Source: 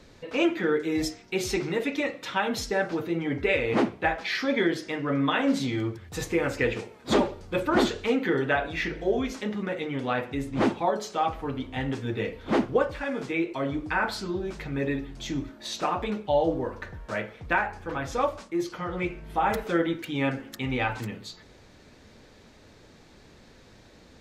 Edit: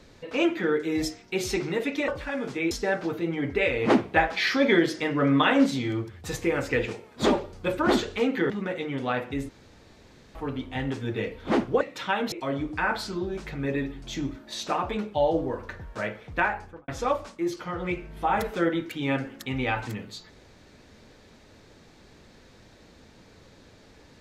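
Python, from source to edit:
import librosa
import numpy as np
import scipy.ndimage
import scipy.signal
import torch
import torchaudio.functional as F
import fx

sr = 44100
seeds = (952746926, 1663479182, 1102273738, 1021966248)

y = fx.studio_fade_out(x, sr, start_s=17.7, length_s=0.31)
y = fx.edit(y, sr, fx.swap(start_s=2.08, length_s=0.51, other_s=12.82, other_length_s=0.63),
    fx.clip_gain(start_s=3.78, length_s=1.76, db=4.0),
    fx.cut(start_s=8.38, length_s=1.13),
    fx.room_tone_fill(start_s=10.5, length_s=0.86), tone=tone)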